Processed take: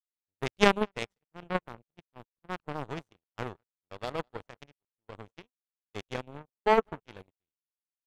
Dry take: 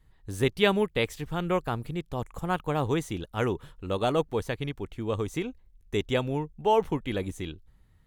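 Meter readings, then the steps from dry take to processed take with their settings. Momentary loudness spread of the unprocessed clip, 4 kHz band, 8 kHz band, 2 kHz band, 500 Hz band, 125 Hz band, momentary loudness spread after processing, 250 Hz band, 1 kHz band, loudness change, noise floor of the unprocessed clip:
11 LU, -4.0 dB, -5.0 dB, -1.5 dB, -5.0 dB, -11.5 dB, 23 LU, -7.0 dB, -2.0 dB, -2.0 dB, -60 dBFS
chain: on a send: bucket-brigade echo 198 ms, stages 4096, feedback 35%, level -15 dB; on the sum: power-law waveshaper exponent 3; treble shelf 5.9 kHz -9.5 dB; harmonic-percussive split harmonic +7 dB; gate -58 dBFS, range -33 dB; in parallel at 0 dB: level held to a coarse grid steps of 12 dB; on the sum: trim +5 dB

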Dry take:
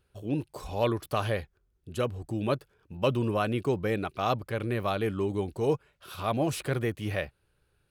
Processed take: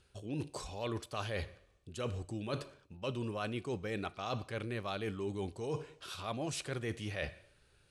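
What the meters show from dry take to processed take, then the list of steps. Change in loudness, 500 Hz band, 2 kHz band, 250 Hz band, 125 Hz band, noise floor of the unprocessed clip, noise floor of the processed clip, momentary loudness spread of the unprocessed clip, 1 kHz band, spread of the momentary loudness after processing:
-9.5 dB, -10.5 dB, -6.5 dB, -9.5 dB, -9.0 dB, -73 dBFS, -69 dBFS, 6 LU, -10.5 dB, 5 LU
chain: treble shelf 3.2 kHz +11 dB; two-slope reverb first 0.58 s, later 2.2 s, from -27 dB, DRR 17.5 dB; reverse; compression 6:1, threshold -38 dBFS, peak gain reduction 17 dB; reverse; low-pass 8.5 kHz 24 dB/octave; trim +2 dB

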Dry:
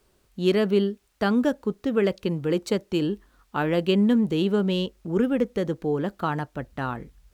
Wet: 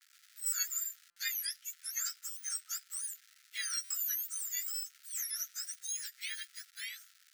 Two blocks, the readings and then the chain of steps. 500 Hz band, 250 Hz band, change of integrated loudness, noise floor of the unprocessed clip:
under -40 dB, under -40 dB, -11.5 dB, -65 dBFS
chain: spectrum inverted on a logarithmic axis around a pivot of 1.7 kHz; crackle 490 per s -38 dBFS; rippled Chebyshev high-pass 1.3 kHz, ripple 3 dB; gate with hold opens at -45 dBFS; buffer glitch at 0.46/1.10/2.30/3.84 s, samples 256, times 10; trim -6.5 dB

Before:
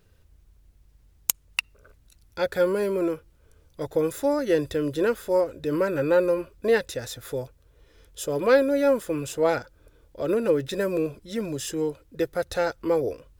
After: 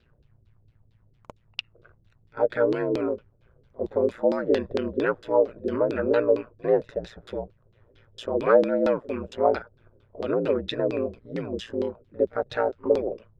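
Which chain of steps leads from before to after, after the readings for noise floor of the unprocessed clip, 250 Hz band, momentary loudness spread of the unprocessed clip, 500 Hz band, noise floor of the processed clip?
-60 dBFS, -1.5 dB, 11 LU, 0.0 dB, -63 dBFS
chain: pre-echo 50 ms -22 dB; ring modulator 58 Hz; LFO low-pass saw down 4.4 Hz 320–4200 Hz

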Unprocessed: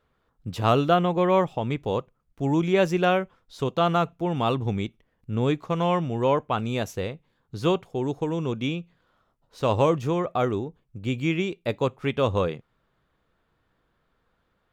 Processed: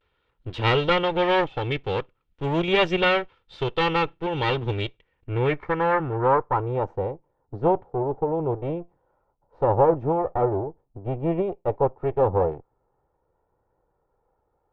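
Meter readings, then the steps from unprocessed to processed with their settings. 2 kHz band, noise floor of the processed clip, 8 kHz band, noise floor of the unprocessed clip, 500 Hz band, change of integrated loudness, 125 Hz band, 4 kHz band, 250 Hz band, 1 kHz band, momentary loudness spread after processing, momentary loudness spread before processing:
+5.0 dB, -73 dBFS, under -10 dB, -72 dBFS, +1.5 dB, +1.0 dB, -1.0 dB, +4.0 dB, -2.5 dB, +2.0 dB, 12 LU, 11 LU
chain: comb filter that takes the minimum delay 2.2 ms; vibrato 0.46 Hz 41 cents; low-pass sweep 3.2 kHz -> 780 Hz, 4.89–6.95 s

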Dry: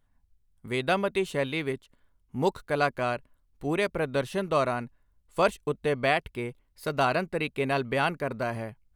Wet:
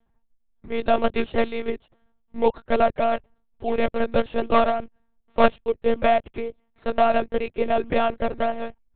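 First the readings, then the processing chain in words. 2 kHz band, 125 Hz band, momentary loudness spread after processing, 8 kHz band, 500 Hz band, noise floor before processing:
-0.5 dB, -5.5 dB, 12 LU, under -30 dB, +6.0 dB, -69 dBFS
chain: peaking EQ 600 Hz +10 dB 1.3 oct; in parallel at -9 dB: decimation with a swept rate 17×, swing 60% 3.5 Hz; on the sum: monotone LPC vocoder at 8 kHz 230 Hz; trim -2.5 dB

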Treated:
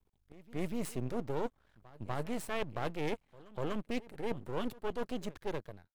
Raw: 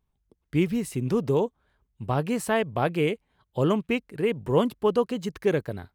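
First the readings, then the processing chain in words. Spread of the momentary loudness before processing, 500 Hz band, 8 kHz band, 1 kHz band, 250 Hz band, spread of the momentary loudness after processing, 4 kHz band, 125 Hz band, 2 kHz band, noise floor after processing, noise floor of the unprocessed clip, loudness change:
6 LU, -13.5 dB, -9.0 dB, -10.5 dB, -12.5 dB, 5 LU, -10.0 dB, -13.5 dB, -11.0 dB, -75 dBFS, -76 dBFS, -13.0 dB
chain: fade out at the end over 1.32 s; reverse; compression 6:1, threshold -32 dBFS, peak gain reduction 15 dB; reverse; pre-echo 245 ms -20 dB; half-wave rectifier; trim +2.5 dB

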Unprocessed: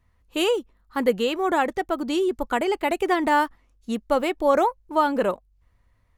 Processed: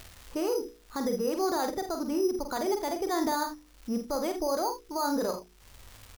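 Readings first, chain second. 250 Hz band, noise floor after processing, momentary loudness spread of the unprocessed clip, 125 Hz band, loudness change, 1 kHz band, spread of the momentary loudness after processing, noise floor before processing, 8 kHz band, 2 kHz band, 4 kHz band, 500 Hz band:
-5.0 dB, -58 dBFS, 11 LU, no reading, -7.0 dB, -9.0 dB, 6 LU, -64 dBFS, +3.0 dB, -13.0 dB, -7.5 dB, -7.0 dB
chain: low-pass 1.5 kHz 12 dB/octave; hum notches 60/120/180/240/300/360/420/480 Hz; peak limiter -19.5 dBFS, peak gain reduction 11 dB; careless resampling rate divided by 8×, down filtered, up hold; crackle 420 per s -48 dBFS; early reflections 47 ms -6.5 dB, 79 ms -14 dB; upward compressor, threshold -32 dBFS; trim -3 dB

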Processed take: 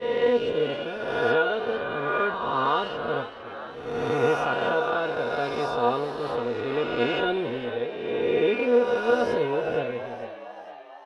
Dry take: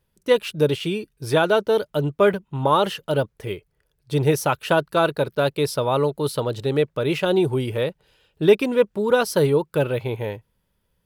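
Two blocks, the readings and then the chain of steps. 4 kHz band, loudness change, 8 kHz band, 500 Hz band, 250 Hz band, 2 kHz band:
-5.0 dB, -4.0 dB, under -15 dB, -4.0 dB, -6.0 dB, -0.5 dB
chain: reverse spectral sustain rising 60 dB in 2.78 s; low-pass 3 kHz 12 dB/octave; expander -16 dBFS; comb 2.8 ms, depth 31%; gain riding 2 s; feedback comb 240 Hz, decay 0.16 s, harmonics all, mix 90%; frequency-shifting echo 457 ms, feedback 56%, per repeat +80 Hz, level -13 dB

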